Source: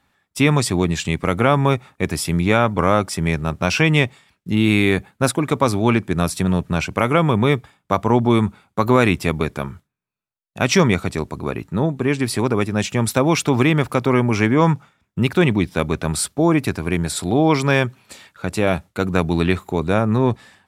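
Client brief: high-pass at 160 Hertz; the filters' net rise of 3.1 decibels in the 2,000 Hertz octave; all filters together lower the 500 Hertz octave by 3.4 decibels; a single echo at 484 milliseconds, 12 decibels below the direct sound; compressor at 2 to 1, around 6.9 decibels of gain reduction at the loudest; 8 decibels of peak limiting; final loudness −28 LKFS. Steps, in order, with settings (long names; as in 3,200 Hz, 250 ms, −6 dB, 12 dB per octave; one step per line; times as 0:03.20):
high-pass filter 160 Hz
parametric band 500 Hz −4.5 dB
parametric band 2,000 Hz +4 dB
downward compressor 2 to 1, threshold −24 dBFS
brickwall limiter −13.5 dBFS
single-tap delay 484 ms −12 dB
level −1 dB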